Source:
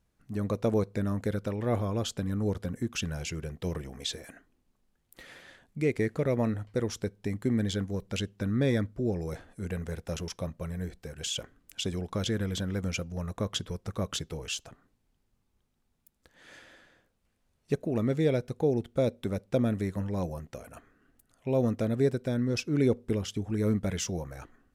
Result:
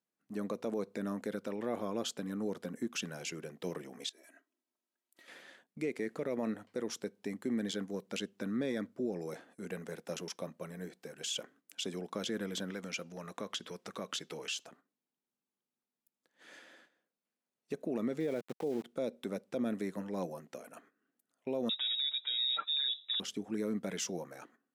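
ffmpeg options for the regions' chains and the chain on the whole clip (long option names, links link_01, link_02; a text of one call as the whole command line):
ffmpeg -i in.wav -filter_complex "[0:a]asettb=1/sr,asplit=3[link_01][link_02][link_03];[link_01]atrim=end=4.094[link_04];[link_02]atrim=start=4.09:end=5.28,asetpts=PTS-STARTPTS,afade=type=in:duration=0.004:curve=qsin,afade=type=out:start_time=1.186:duration=0.004:curve=qsin,bass=frequency=250:gain=-10,treble=frequency=4000:gain=2,aecho=1:1:3.1:0.74,atrim=end_sample=52479,acompressor=threshold=-52dB:ratio=20:attack=3.2:release=140:knee=1:detection=peak[link_05];[link_03]atrim=start=5.276[link_06];[link_04][link_05]acrossfade=duration=0.004:curve1=hsin:curve2=qsin[link_07];[link_07][link_06]acrossfade=duration=0.004:curve1=qsin:curve2=hsin,asettb=1/sr,asplit=3[link_08][link_09][link_10];[link_08]atrim=end=12.704[link_11];[link_09]atrim=start=12.7:end=14.65,asetpts=PTS-STARTPTS,afade=type=in:duration=0.004:curve=qsin,afade=type=out:start_time=1.946:duration=0.004:curve=qsin,equalizer=frequency=2900:width=0.38:gain=6.5,acompressor=threshold=-33dB:ratio=2.5:attack=3.2:release=140:knee=1:detection=peak[link_12];[link_10]atrim=start=14.646[link_13];[link_11][link_12]acrossfade=duration=0.004:curve1=hsin:curve2=qsin[link_14];[link_14][link_13]acrossfade=duration=0.004:curve1=qsin:curve2=hsin,asettb=1/sr,asplit=3[link_15][link_16][link_17];[link_15]atrim=end=18.204[link_18];[link_16]atrim=start=18.2:end=18.84,asetpts=PTS-STARTPTS,afade=type=in:duration=0.004:curve=qsin,afade=type=out:start_time=0.636:duration=0.004:curve=qsin,lowpass=2700,aeval=exprs='val(0)*gte(abs(val(0)),0.01)':channel_layout=same[link_19];[link_17]atrim=start=18.836[link_20];[link_18][link_19]acrossfade=duration=0.004:curve1=hsin:curve2=qsin[link_21];[link_21][link_20]acrossfade=duration=0.004:curve1=qsin:curve2=hsin,asettb=1/sr,asplit=3[link_22][link_23][link_24];[link_22]atrim=end=21.694[link_25];[link_23]atrim=start=21.69:end=23.2,asetpts=PTS-STARTPTS,afade=type=in:duration=0.004:curve=qsin,afade=type=out:start_time=1.506:duration=0.004:curve=qsin,aecho=1:1:6.7:0.97,atrim=end_sample=66591,lowpass=frequency=3300:width_type=q:width=0.5098,lowpass=frequency=3300:width_type=q:width=0.6013,lowpass=frequency=3300:width_type=q:width=0.9,lowpass=frequency=3300:width_type=q:width=2.563,afreqshift=-3900[link_26];[link_24]atrim=start=23.196[link_27];[link_25][link_26]acrossfade=duration=0.004:curve1=hsin:curve2=qsin[link_28];[link_28][link_27]acrossfade=duration=0.004:curve1=qsin:curve2=hsin,highpass=frequency=200:width=0.5412,highpass=frequency=200:width=1.3066,agate=range=-11dB:threshold=-58dB:ratio=16:detection=peak,alimiter=limit=-23dB:level=0:latency=1:release=57,volume=-3dB" out.wav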